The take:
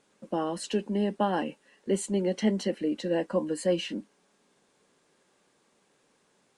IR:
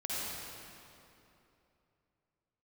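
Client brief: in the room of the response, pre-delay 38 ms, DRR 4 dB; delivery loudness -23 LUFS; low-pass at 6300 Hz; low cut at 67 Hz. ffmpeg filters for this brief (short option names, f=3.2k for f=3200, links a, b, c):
-filter_complex "[0:a]highpass=67,lowpass=6.3k,asplit=2[a][b];[1:a]atrim=start_sample=2205,adelay=38[c];[b][c]afir=irnorm=-1:irlink=0,volume=-9dB[d];[a][d]amix=inputs=2:normalize=0,volume=5.5dB"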